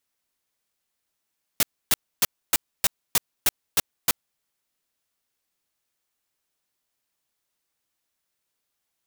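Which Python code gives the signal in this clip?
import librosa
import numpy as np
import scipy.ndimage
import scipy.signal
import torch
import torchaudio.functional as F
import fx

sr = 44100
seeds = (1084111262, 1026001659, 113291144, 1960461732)

y = fx.noise_burst(sr, seeds[0], colour='white', on_s=0.03, off_s=0.28, bursts=9, level_db=-18.5)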